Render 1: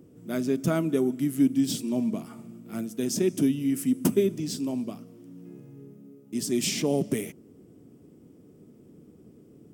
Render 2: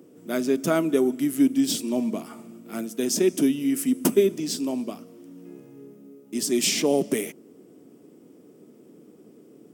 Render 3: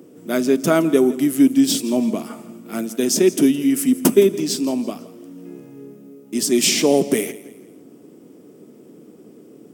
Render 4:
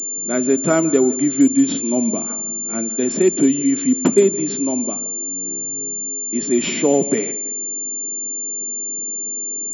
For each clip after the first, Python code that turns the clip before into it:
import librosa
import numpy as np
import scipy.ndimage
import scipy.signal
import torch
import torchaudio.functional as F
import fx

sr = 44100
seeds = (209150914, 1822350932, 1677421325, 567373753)

y1 = scipy.signal.sosfilt(scipy.signal.butter(2, 280.0, 'highpass', fs=sr, output='sos'), x)
y1 = y1 * 10.0 ** (5.5 / 20.0)
y2 = fx.echo_feedback(y1, sr, ms=166, feedback_pct=39, wet_db=-18)
y2 = y2 * 10.0 ** (6.0 / 20.0)
y3 = fx.air_absorb(y2, sr, metres=58.0)
y3 = fx.pwm(y3, sr, carrier_hz=7200.0)